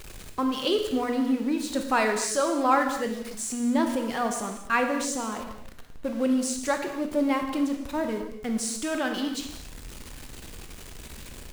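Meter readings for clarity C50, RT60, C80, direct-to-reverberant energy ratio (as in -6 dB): 6.0 dB, no single decay rate, 8.0 dB, 4.5 dB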